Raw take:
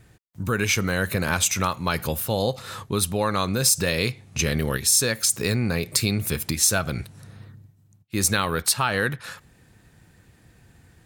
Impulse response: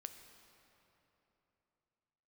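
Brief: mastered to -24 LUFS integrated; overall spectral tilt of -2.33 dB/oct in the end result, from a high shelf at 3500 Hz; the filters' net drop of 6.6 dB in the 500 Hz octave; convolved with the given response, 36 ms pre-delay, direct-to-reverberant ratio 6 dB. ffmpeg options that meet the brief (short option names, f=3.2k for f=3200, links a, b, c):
-filter_complex "[0:a]equalizer=f=500:t=o:g=-8,highshelf=f=3.5k:g=5.5,asplit=2[a][b];[1:a]atrim=start_sample=2205,adelay=36[c];[b][c]afir=irnorm=-1:irlink=0,volume=-1dB[d];[a][d]amix=inputs=2:normalize=0,volume=-5dB"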